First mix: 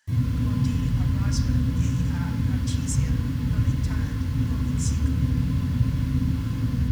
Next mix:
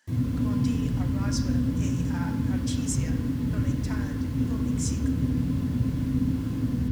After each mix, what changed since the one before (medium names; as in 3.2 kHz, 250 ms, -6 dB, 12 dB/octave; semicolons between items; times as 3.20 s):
background: send -7.0 dB; master: add peaking EQ 330 Hz +12 dB 1.6 oct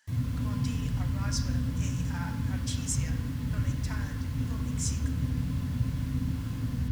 master: add peaking EQ 330 Hz -12 dB 1.6 oct